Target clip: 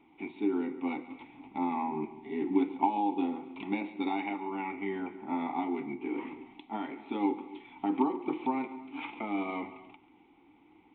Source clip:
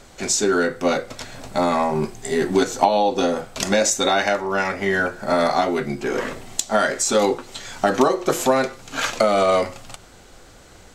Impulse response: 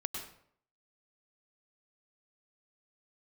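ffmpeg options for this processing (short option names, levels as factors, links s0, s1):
-filter_complex "[0:a]asplit=3[s0][s1][s2];[s0]bandpass=f=300:t=q:w=8,volume=1[s3];[s1]bandpass=f=870:t=q:w=8,volume=0.501[s4];[s2]bandpass=f=2240:t=q:w=8,volume=0.355[s5];[s3][s4][s5]amix=inputs=3:normalize=0,asplit=2[s6][s7];[1:a]atrim=start_sample=2205,afade=t=out:st=0.22:d=0.01,atrim=end_sample=10143,adelay=139[s8];[s7][s8]afir=irnorm=-1:irlink=0,volume=0.178[s9];[s6][s9]amix=inputs=2:normalize=0,aresample=8000,aresample=44100"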